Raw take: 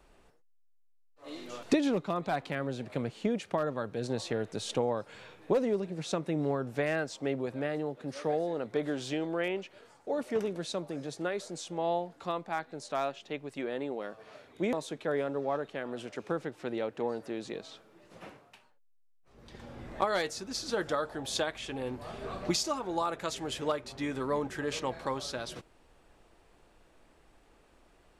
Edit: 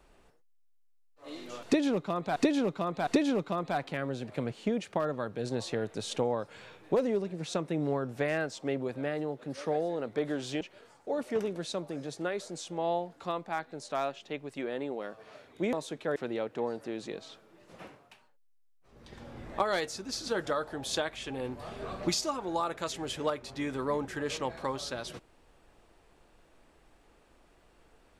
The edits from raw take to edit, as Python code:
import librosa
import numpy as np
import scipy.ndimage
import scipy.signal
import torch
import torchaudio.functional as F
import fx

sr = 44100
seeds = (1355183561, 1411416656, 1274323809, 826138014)

y = fx.edit(x, sr, fx.repeat(start_s=1.65, length_s=0.71, count=3),
    fx.cut(start_s=9.19, length_s=0.42),
    fx.cut(start_s=15.16, length_s=1.42), tone=tone)